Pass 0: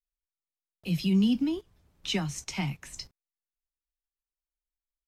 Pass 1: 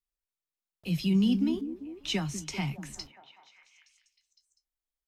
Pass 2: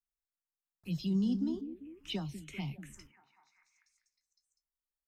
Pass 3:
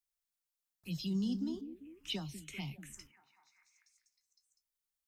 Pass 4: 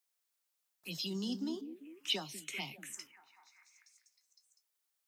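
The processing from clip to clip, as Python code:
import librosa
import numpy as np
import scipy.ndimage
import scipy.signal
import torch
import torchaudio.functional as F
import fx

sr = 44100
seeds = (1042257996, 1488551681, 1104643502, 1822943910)

y1 = fx.echo_stepped(x, sr, ms=197, hz=250.0, octaves=0.7, feedback_pct=70, wet_db=-7)
y1 = F.gain(torch.from_numpy(y1), -1.0).numpy()
y2 = fx.env_phaser(y1, sr, low_hz=510.0, high_hz=2400.0, full_db=-25.0)
y2 = F.gain(torch.from_numpy(y2), -6.0).numpy()
y3 = fx.high_shelf(y2, sr, hz=2500.0, db=9.0)
y3 = F.gain(torch.from_numpy(y3), -4.0).numpy()
y4 = scipy.signal.sosfilt(scipy.signal.butter(2, 380.0, 'highpass', fs=sr, output='sos'), y3)
y4 = F.gain(torch.from_numpy(y4), 6.0).numpy()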